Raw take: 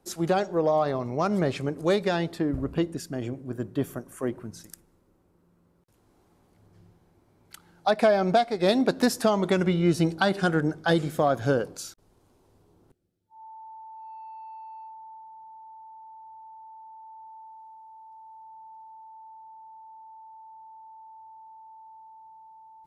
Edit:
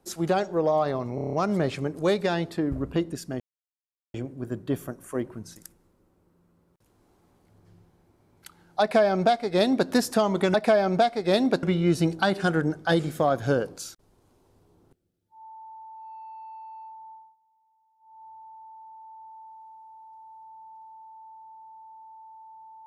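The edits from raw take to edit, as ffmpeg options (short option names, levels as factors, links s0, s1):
-filter_complex "[0:a]asplit=12[s0][s1][s2][s3][s4][s5][s6][s7][s8][s9][s10][s11];[s0]atrim=end=1.182[s12];[s1]atrim=start=1.148:end=1.182[s13];[s2]atrim=start=1.148:end=1.182[s14];[s3]atrim=start=1.148:end=1.182[s15];[s4]atrim=start=1.148:end=1.182[s16];[s5]atrim=start=1.148:end=1.182[s17];[s6]atrim=start=1.148:end=3.22,asetpts=PTS-STARTPTS,afade=t=out:st=2.068:d=0.004:c=hsin,apad=pad_dur=0.74[s18];[s7]atrim=start=3.22:end=9.622,asetpts=PTS-STARTPTS,afade=t=in:d=0.004:c=hsin[s19];[s8]atrim=start=7.888:end=8.982[s20];[s9]atrim=start=9.618:end=15.35,asetpts=PTS-STARTPTS,afade=t=out:st=5.482:d=0.25:silence=0.0841395[s21];[s10]atrim=start=15.35:end=15.98,asetpts=PTS-STARTPTS,volume=0.0841[s22];[s11]atrim=start=15.98,asetpts=PTS-STARTPTS,afade=t=in:d=0.25:silence=0.0841395[s23];[s12][s13]acrossfade=d=0.004:c1=hsin:c2=hsin[s24];[s24][s14]acrossfade=d=0.004:c1=hsin:c2=hsin[s25];[s25][s15]acrossfade=d=0.004:c1=hsin:c2=hsin[s26];[s26][s16]acrossfade=d=0.004:c1=hsin:c2=hsin[s27];[s27][s17]acrossfade=d=0.004:c1=hsin:c2=hsin[s28];[s18][s19]concat=n=2:v=0:a=1[s29];[s28][s29]acrossfade=d=0.004:c1=hsin:c2=hsin[s30];[s30][s20]acrossfade=d=0.004:c1=hsin:c2=hsin[s31];[s21][s22][s23]concat=n=3:v=0:a=1[s32];[s31][s32]acrossfade=d=0.004:c1=hsin:c2=hsin"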